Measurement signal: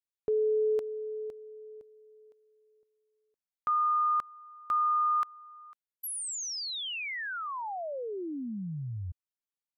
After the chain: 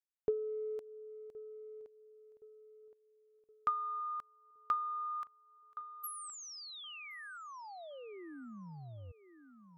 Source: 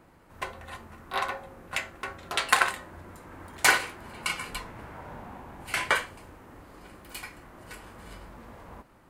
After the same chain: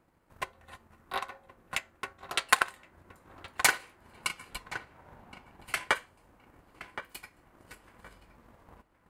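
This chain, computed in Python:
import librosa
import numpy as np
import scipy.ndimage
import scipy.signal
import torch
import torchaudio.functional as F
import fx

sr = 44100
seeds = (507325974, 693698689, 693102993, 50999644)

y = fx.high_shelf(x, sr, hz=10000.0, db=2.5)
y = fx.echo_filtered(y, sr, ms=1069, feedback_pct=39, hz=2300.0, wet_db=-11.0)
y = fx.transient(y, sr, attack_db=12, sustain_db=-4)
y = F.gain(torch.from_numpy(y), -12.5).numpy()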